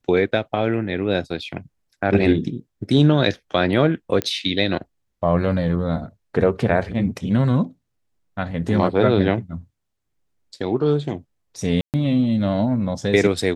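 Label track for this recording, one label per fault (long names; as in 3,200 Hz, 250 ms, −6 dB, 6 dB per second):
4.220000	4.220000	click −7 dBFS
11.810000	11.940000	drop-out 128 ms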